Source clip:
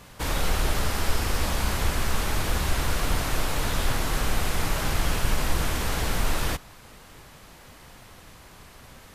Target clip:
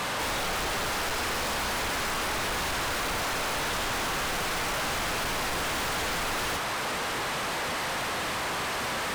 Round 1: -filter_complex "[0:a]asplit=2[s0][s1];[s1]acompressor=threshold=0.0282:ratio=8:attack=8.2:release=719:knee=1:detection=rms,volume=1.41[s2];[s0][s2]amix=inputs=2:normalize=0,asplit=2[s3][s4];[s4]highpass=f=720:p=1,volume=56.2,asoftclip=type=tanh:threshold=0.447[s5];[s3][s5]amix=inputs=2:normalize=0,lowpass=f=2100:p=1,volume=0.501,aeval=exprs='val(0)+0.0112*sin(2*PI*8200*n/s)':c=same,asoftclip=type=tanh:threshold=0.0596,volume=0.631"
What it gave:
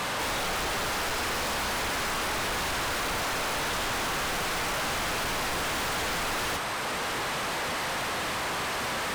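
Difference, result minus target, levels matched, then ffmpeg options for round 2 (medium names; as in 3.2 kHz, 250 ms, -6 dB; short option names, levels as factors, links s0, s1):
compression: peak gain reduction +7 dB
-filter_complex "[0:a]asplit=2[s0][s1];[s1]acompressor=threshold=0.0708:ratio=8:attack=8.2:release=719:knee=1:detection=rms,volume=1.41[s2];[s0][s2]amix=inputs=2:normalize=0,asplit=2[s3][s4];[s4]highpass=f=720:p=1,volume=56.2,asoftclip=type=tanh:threshold=0.447[s5];[s3][s5]amix=inputs=2:normalize=0,lowpass=f=2100:p=1,volume=0.501,aeval=exprs='val(0)+0.0112*sin(2*PI*8200*n/s)':c=same,asoftclip=type=tanh:threshold=0.0596,volume=0.631"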